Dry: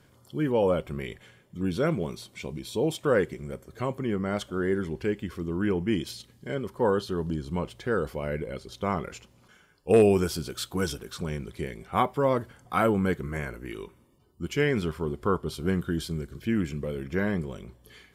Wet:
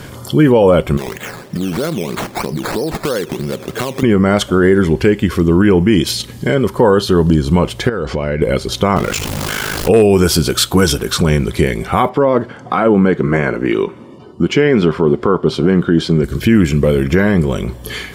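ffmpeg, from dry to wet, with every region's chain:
ffmpeg -i in.wav -filter_complex "[0:a]asettb=1/sr,asplit=3[link_01][link_02][link_03];[link_01]atrim=end=0.974[link_04];[link_02]atrim=start=0.97:end=4.03,asetpts=PTS-STARTPTS,afade=type=in:duration=0.004:curve=qsin,afade=type=out:start_time=3.056:duration=0.004:curve=qsin,highpass=150,acompressor=threshold=-40dB:ratio=5:attack=3.2:release=140:knee=1:detection=peak,acrusher=samples=12:mix=1:aa=0.000001:lfo=1:lforange=7.2:lforate=3.1[link_05];[link_03]atrim=start=4.026[link_06];[link_04][link_05]acrossfade=duration=0.004:curve1=hsin:curve2=qsin[link_07];[link_07][link_06]acrossfade=duration=0.004:curve1=qsin:curve2=hsin,asettb=1/sr,asplit=3[link_08][link_09][link_10];[link_08]atrim=end=7.894[link_11];[link_09]atrim=start=7.89:end=8.42,asetpts=PTS-STARTPTS,afade=type=in:duration=0.004:curve=qsin,afade=type=out:start_time=0.526:duration=0.004:curve=qsin,lowpass=frequency=6700:width=0.5412,lowpass=frequency=6700:width=1.3066,acompressor=threshold=-37dB:ratio=6:attack=3.2:release=140:knee=1:detection=peak[link_12];[link_10]atrim=start=8.416[link_13];[link_11][link_12]acrossfade=duration=0.004:curve1=hsin:curve2=qsin[link_14];[link_14][link_13]acrossfade=duration=0.004:curve1=qsin:curve2=hsin,asettb=1/sr,asplit=3[link_15][link_16][link_17];[link_15]atrim=end=8.964[link_18];[link_16]atrim=start=8.96:end=9.89,asetpts=PTS-STARTPTS,afade=type=in:duration=0.004:curve=qsin,afade=type=out:start_time=0.926:duration=0.004:curve=qsin,aeval=exprs='val(0)+0.5*0.0126*sgn(val(0))':channel_layout=same,aeval=exprs='val(0)*sin(2*PI*26*n/s)':channel_layout=same[link_19];[link_17]atrim=start=9.886[link_20];[link_18][link_19]acrossfade=duration=0.004:curve1=hsin:curve2=qsin[link_21];[link_21][link_20]acrossfade=duration=0.004:curve1=qsin:curve2=hsin,asettb=1/sr,asplit=3[link_22][link_23][link_24];[link_22]atrim=end=12.094[link_25];[link_23]atrim=start=12.09:end=16.24,asetpts=PTS-STARTPTS,afade=type=in:duration=0.004:curve=qsin,afade=type=out:start_time=4.146:duration=0.004:curve=qsin,highpass=180,lowpass=5000,tiltshelf=frequency=1300:gain=3.5[link_26];[link_24]atrim=start=16.236[link_27];[link_25][link_26]acrossfade=duration=0.004:curve1=hsin:curve2=qsin[link_28];[link_28][link_27]acrossfade=duration=0.004:curve1=qsin:curve2=hsin,acompressor=threshold=-50dB:ratio=1.5,alimiter=level_in=28.5dB:limit=-1dB:release=50:level=0:latency=1,volume=-1dB" out.wav

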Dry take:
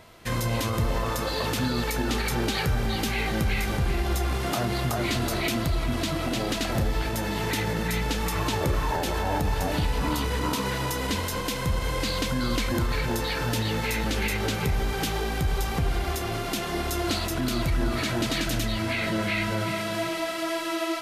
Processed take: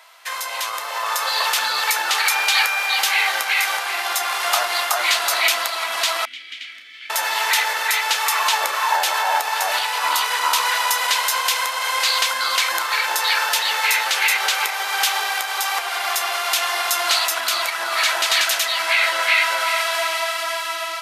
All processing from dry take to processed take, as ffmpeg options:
ffmpeg -i in.wav -filter_complex "[0:a]asettb=1/sr,asplit=3[link_01][link_02][link_03];[link_01]atrim=end=2.294[link_04];[link_02]atrim=start=2.29:end=2.99,asetpts=PTS-STARTPTS,afade=type=in:duration=0.004:curve=qsin,afade=type=out:start_time=0.696:duration=0.004:curve=qsin,highpass=frequency=430:poles=1,aeval=exprs='val(0)+0.02*sin(2*PI*2400*n/s)':channel_layout=same[link_05];[link_03]atrim=start=2.986[link_06];[link_04][link_05]acrossfade=duration=0.004:curve1=hsin:curve2=qsin[link_07];[link_07][link_06]acrossfade=duration=0.004:curve1=qsin:curve2=hsin,asettb=1/sr,asplit=3[link_08][link_09][link_10];[link_08]atrim=end=6.254[link_11];[link_09]atrim=start=6.25:end=7.1,asetpts=PTS-STARTPTS,afade=type=in:duration=0.004:curve=qsin,afade=type=out:start_time=0.846:duration=0.004:curve=qsin,asplit=3[link_12][link_13][link_14];[link_12]bandpass=frequency=270:width_type=q:width=8,volume=0dB[link_15];[link_13]bandpass=frequency=2290:width_type=q:width=8,volume=-6dB[link_16];[link_14]bandpass=frequency=3010:width_type=q:width=8,volume=-9dB[link_17];[link_15][link_16][link_17]amix=inputs=3:normalize=0,equalizer=frequency=500:width_type=o:width=1.3:gain=-12.5,asplit=2[link_18][link_19];[link_19]adelay=33,volume=-13dB[link_20];[link_18][link_20]amix=inputs=2:normalize=0,atrim=end_sample=37485[link_21];[link_10]atrim=start=7.096[link_22];[link_11][link_21]acrossfade=duration=0.004:curve1=hsin:curve2=qsin[link_23];[link_23][link_22]acrossfade=duration=0.004:curve1=qsin:curve2=hsin,highpass=frequency=810:width=0.5412,highpass=frequency=810:width=1.3066,dynaudnorm=framelen=320:gausssize=7:maxgain=6.5dB,volume=6dB" out.wav

